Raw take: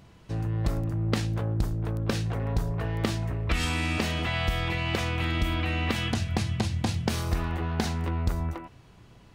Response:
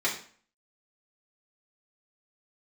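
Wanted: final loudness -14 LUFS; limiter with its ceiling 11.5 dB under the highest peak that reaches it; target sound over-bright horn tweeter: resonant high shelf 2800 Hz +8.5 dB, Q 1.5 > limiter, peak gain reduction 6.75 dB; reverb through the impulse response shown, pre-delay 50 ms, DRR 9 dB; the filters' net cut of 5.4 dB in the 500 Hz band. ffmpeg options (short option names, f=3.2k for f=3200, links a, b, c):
-filter_complex "[0:a]equalizer=f=500:t=o:g=-7,alimiter=limit=-24dB:level=0:latency=1,asplit=2[a][b];[1:a]atrim=start_sample=2205,adelay=50[c];[b][c]afir=irnorm=-1:irlink=0,volume=-19dB[d];[a][d]amix=inputs=2:normalize=0,highshelf=f=2.8k:t=q:w=1.5:g=8.5,volume=18.5dB,alimiter=limit=-5dB:level=0:latency=1"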